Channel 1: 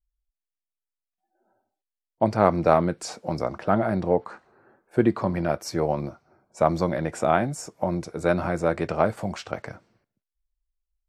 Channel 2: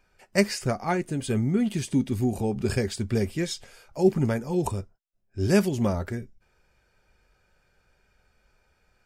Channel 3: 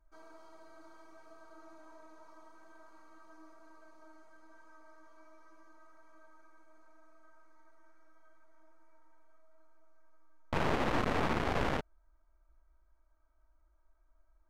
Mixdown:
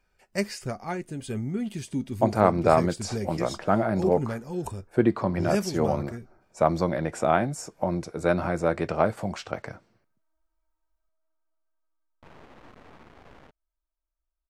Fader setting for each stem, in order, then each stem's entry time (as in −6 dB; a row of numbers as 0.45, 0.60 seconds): −1.0, −6.0, −19.5 decibels; 0.00, 0.00, 1.70 seconds